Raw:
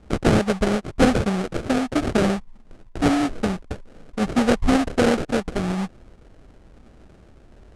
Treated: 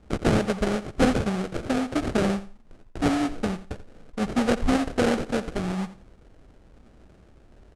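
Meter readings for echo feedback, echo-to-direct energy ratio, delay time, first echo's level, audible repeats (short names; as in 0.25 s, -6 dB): 22%, -15.0 dB, 86 ms, -15.0 dB, 2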